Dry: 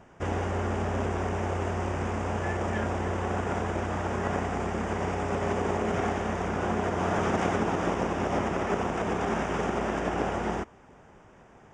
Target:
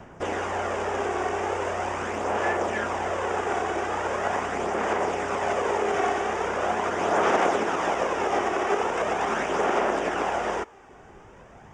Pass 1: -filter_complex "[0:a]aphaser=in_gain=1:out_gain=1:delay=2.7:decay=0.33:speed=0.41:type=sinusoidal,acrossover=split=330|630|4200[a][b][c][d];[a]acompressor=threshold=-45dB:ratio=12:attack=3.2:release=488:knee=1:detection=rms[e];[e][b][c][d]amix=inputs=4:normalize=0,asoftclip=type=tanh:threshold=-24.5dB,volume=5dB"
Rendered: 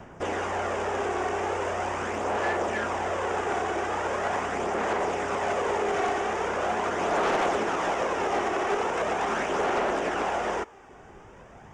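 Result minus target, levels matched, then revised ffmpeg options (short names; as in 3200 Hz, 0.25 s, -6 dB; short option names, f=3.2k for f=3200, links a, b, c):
soft clip: distortion +17 dB
-filter_complex "[0:a]aphaser=in_gain=1:out_gain=1:delay=2.7:decay=0.33:speed=0.41:type=sinusoidal,acrossover=split=330|630|4200[a][b][c][d];[a]acompressor=threshold=-45dB:ratio=12:attack=3.2:release=488:knee=1:detection=rms[e];[e][b][c][d]amix=inputs=4:normalize=0,asoftclip=type=tanh:threshold=-13dB,volume=5dB"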